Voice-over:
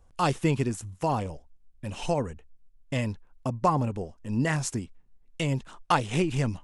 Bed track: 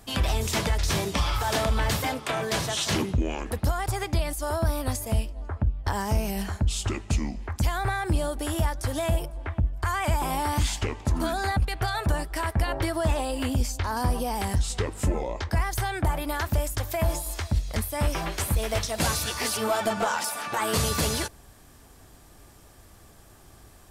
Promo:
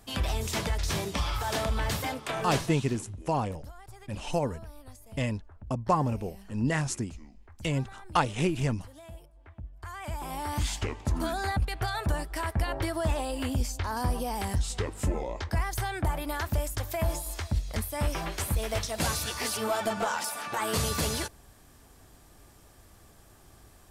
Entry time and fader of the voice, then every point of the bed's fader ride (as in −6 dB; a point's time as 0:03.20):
2.25 s, −1.5 dB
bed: 0:02.56 −4.5 dB
0:02.87 −21 dB
0:09.36 −21 dB
0:10.72 −3.5 dB